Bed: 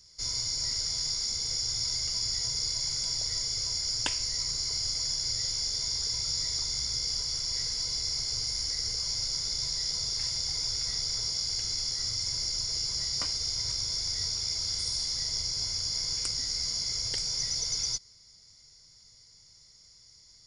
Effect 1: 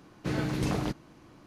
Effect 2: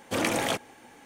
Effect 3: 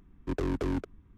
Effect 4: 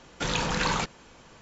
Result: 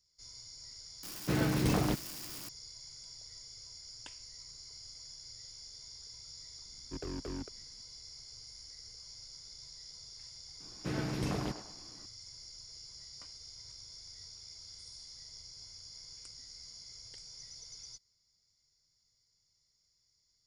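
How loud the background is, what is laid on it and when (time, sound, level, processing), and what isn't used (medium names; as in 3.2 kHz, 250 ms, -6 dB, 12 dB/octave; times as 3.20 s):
bed -19 dB
1.03 s: add 1 + zero-crossing glitches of -33 dBFS
6.64 s: add 3 -10.5 dB
10.60 s: add 1 -5.5 dB + band-passed feedback delay 101 ms, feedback 46%, level -7 dB
not used: 2, 4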